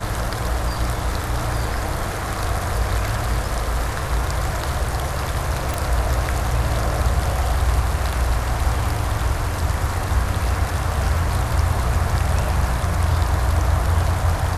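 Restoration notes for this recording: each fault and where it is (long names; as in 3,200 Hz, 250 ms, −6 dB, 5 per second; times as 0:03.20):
0:05.74: click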